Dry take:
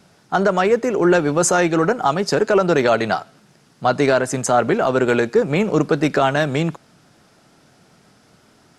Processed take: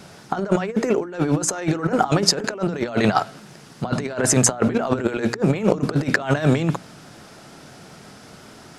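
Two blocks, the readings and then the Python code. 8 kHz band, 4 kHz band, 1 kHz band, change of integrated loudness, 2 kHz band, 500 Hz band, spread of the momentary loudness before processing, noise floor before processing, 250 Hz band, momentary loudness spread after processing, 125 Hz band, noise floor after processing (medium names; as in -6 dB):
+3.5 dB, +2.0 dB, -5.5 dB, -3.0 dB, -4.5 dB, -6.5 dB, 5 LU, -55 dBFS, -1.0 dB, 8 LU, +2.0 dB, -45 dBFS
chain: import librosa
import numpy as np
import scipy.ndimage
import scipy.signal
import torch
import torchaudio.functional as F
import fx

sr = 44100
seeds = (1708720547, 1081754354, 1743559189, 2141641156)

y = fx.over_compress(x, sr, threshold_db=-23.0, ratio=-0.5)
y = fx.hum_notches(y, sr, base_hz=60, count=5)
y = F.gain(torch.from_numpy(y), 3.5).numpy()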